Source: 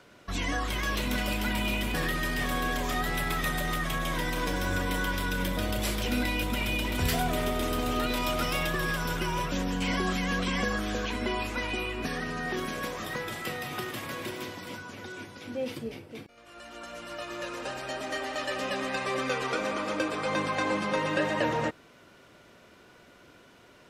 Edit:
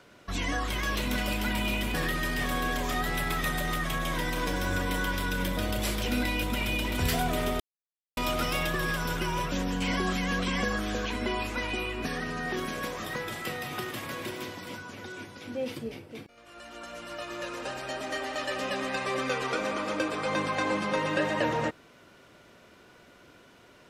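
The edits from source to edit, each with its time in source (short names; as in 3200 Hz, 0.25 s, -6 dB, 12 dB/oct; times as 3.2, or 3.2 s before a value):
7.6–8.17 mute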